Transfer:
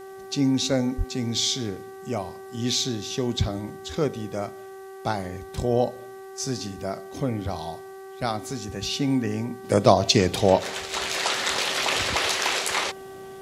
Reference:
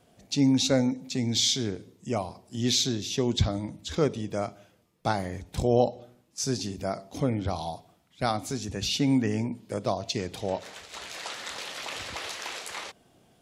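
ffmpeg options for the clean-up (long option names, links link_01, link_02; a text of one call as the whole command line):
ffmpeg -i in.wav -filter_complex "[0:a]bandreject=frequency=385.1:width_type=h:width=4,bandreject=frequency=770.2:width_type=h:width=4,bandreject=frequency=1155.3:width_type=h:width=4,bandreject=frequency=1540.4:width_type=h:width=4,bandreject=frequency=1925.5:width_type=h:width=4,asplit=3[link_01][link_02][link_03];[link_01]afade=type=out:start_time=0.97:duration=0.02[link_04];[link_02]highpass=frequency=140:width=0.5412,highpass=frequency=140:width=1.3066,afade=type=in:start_time=0.97:duration=0.02,afade=type=out:start_time=1.09:duration=0.02[link_05];[link_03]afade=type=in:start_time=1.09:duration=0.02[link_06];[link_04][link_05][link_06]amix=inputs=3:normalize=0,agate=range=-21dB:threshold=-33dB,asetnsamples=nb_out_samples=441:pad=0,asendcmd='9.64 volume volume -12dB',volume=0dB" out.wav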